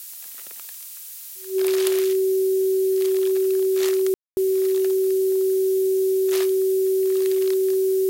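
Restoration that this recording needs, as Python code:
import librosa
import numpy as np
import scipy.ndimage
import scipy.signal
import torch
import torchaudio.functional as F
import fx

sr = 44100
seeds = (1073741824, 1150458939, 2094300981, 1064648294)

y = fx.notch(x, sr, hz=380.0, q=30.0)
y = fx.fix_ambience(y, sr, seeds[0], print_start_s=0.87, print_end_s=1.37, start_s=4.14, end_s=4.37)
y = fx.noise_reduce(y, sr, print_start_s=0.87, print_end_s=1.37, reduce_db=30.0)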